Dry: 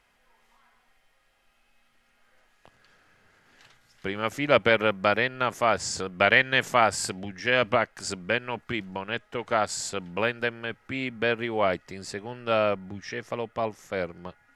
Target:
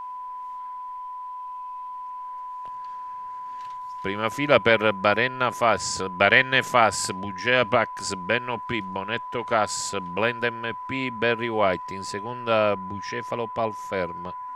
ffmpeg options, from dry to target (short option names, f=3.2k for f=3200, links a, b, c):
-af "aeval=exprs='val(0)+0.0178*sin(2*PI*1000*n/s)':c=same,volume=2.5dB"